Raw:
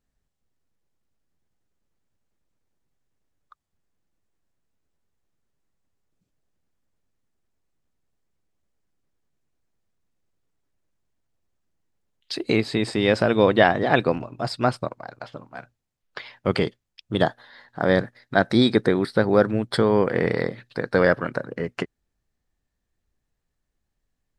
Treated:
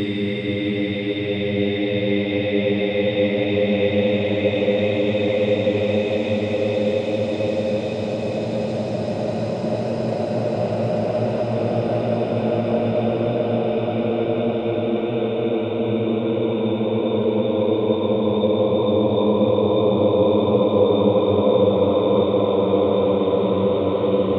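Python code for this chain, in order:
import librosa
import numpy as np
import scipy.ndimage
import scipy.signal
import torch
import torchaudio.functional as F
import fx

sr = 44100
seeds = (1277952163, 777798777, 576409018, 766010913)

y = fx.env_flanger(x, sr, rest_ms=3.1, full_db=-15.5)
y = fx.high_shelf(y, sr, hz=7200.0, db=-11.0)
y = fx.paulstretch(y, sr, seeds[0], factor=48.0, window_s=0.25, from_s=13.0)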